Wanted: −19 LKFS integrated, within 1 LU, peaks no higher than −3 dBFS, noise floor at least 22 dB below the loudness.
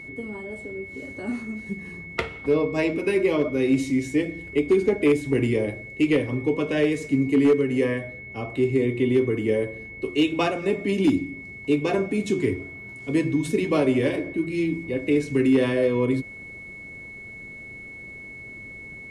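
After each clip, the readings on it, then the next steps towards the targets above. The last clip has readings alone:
share of clipped samples 0.3%; peaks flattened at −12.0 dBFS; interfering tone 2,200 Hz; level of the tone −38 dBFS; integrated loudness −24.0 LKFS; sample peak −12.0 dBFS; target loudness −19.0 LKFS
→ clipped peaks rebuilt −12 dBFS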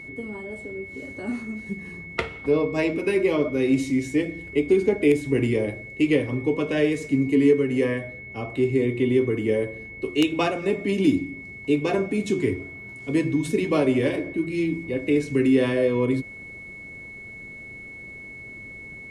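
share of clipped samples 0.0%; interfering tone 2,200 Hz; level of the tone −38 dBFS
→ notch filter 2,200 Hz, Q 30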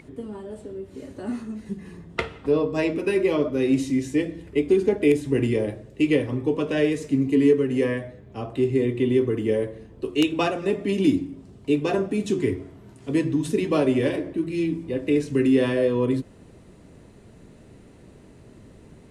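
interfering tone none found; integrated loudness −23.5 LKFS; sample peak −3.5 dBFS; target loudness −19.0 LKFS
→ level +4.5 dB
brickwall limiter −3 dBFS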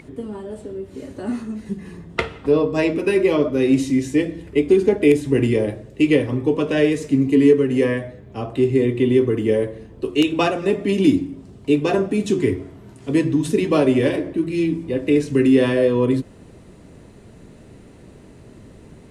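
integrated loudness −19.0 LKFS; sample peak −3.0 dBFS; background noise floor −45 dBFS

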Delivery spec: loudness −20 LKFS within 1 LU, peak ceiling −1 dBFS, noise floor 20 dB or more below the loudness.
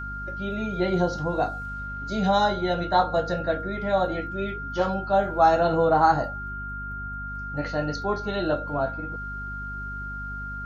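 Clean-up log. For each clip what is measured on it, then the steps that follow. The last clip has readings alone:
mains hum 50 Hz; hum harmonics up to 250 Hz; level of the hum −35 dBFS; interfering tone 1,400 Hz; level of the tone −33 dBFS; integrated loudness −26.0 LKFS; sample peak −7.0 dBFS; target loudness −20.0 LKFS
→ mains-hum notches 50/100/150/200/250 Hz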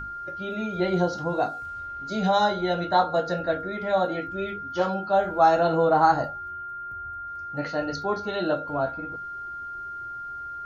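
mains hum none found; interfering tone 1,400 Hz; level of the tone −33 dBFS
→ notch filter 1,400 Hz, Q 30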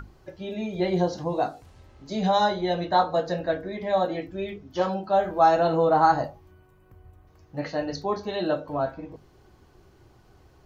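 interfering tone none found; integrated loudness −25.5 LKFS; sample peak −8.0 dBFS; target loudness −20.0 LKFS
→ level +5.5 dB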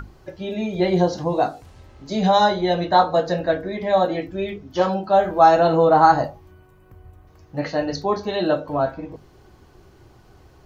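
integrated loudness −20.0 LKFS; sample peak −2.5 dBFS; background noise floor −51 dBFS

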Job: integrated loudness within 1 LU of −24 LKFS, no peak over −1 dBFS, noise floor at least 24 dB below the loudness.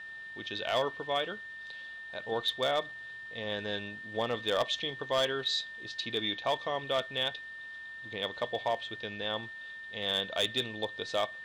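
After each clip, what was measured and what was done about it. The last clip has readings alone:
share of clipped samples 0.4%; peaks flattened at −21.5 dBFS; interfering tone 1,800 Hz; level of the tone −42 dBFS; integrated loudness −33.5 LKFS; sample peak −21.5 dBFS; target loudness −24.0 LKFS
→ clipped peaks rebuilt −21.5 dBFS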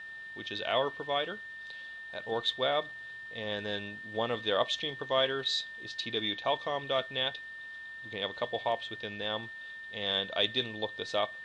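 share of clipped samples 0.0%; interfering tone 1,800 Hz; level of the tone −42 dBFS
→ notch filter 1,800 Hz, Q 30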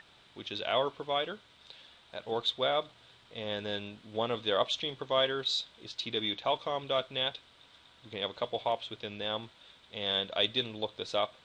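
interfering tone none found; integrated loudness −33.0 LKFS; sample peak −13.0 dBFS; target loudness −24.0 LKFS
→ level +9 dB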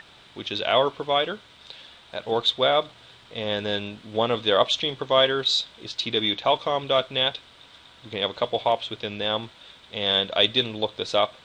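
integrated loudness −24.0 LKFS; sample peak −4.0 dBFS; background noise floor −52 dBFS

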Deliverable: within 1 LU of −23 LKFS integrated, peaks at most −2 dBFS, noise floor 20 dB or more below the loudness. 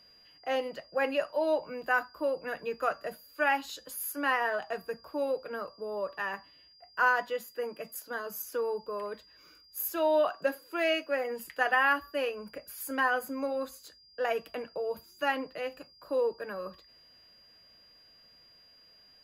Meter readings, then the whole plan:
interfering tone 4,800 Hz; level of the tone −57 dBFS; integrated loudness −32.0 LKFS; sample peak −13.5 dBFS; target loudness −23.0 LKFS
→ notch filter 4,800 Hz, Q 30
level +9 dB

